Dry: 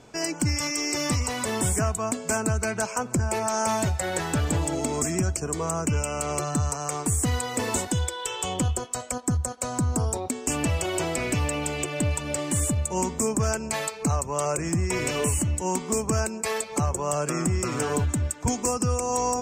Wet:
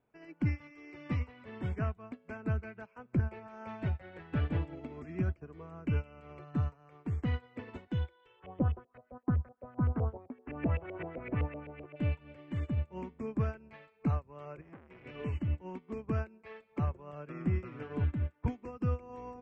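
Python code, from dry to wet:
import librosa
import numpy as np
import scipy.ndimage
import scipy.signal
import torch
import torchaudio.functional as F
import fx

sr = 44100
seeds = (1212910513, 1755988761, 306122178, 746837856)

y = fx.filter_lfo_lowpass(x, sr, shape='saw_up', hz=7.8, low_hz=500.0, high_hz=2400.0, q=2.6, at=(8.39, 11.95), fade=0.02)
y = fx.transformer_sat(y, sr, knee_hz=1200.0, at=(14.61, 15.06))
y = scipy.signal.sosfilt(scipy.signal.butter(4, 2600.0, 'lowpass', fs=sr, output='sos'), y)
y = fx.dynamic_eq(y, sr, hz=840.0, q=0.87, threshold_db=-41.0, ratio=4.0, max_db=-7)
y = fx.upward_expand(y, sr, threshold_db=-38.0, expansion=2.5)
y = y * 10.0 ** (-2.0 / 20.0)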